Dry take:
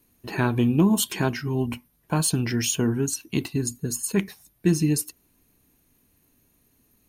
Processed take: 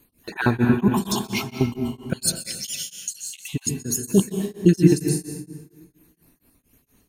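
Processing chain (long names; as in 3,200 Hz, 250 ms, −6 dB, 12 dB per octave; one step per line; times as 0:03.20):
time-frequency cells dropped at random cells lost 35%
0:00.88–0:01.61: compressor whose output falls as the input rises −37 dBFS, ratio −1
0:02.13–0:03.49: inverse Chebyshev high-pass filter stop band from 800 Hz, stop band 60 dB
convolution reverb RT60 1.6 s, pre-delay 118 ms, DRR 3.5 dB
tremolo along a rectified sine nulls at 4.3 Hz
level +6.5 dB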